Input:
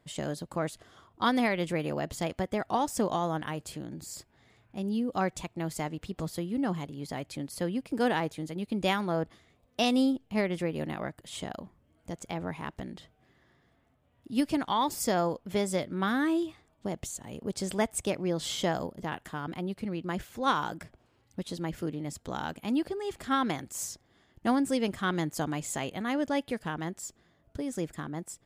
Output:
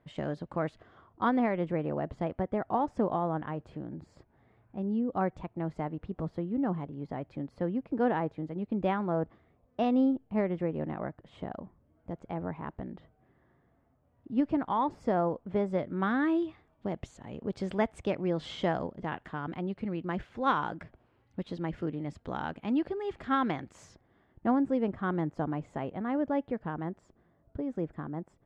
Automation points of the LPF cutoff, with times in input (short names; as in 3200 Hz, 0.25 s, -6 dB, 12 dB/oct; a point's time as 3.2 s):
0.72 s 2100 Hz
1.47 s 1300 Hz
15.64 s 1300 Hz
16.23 s 2400 Hz
23.7 s 2400 Hz
24.57 s 1200 Hz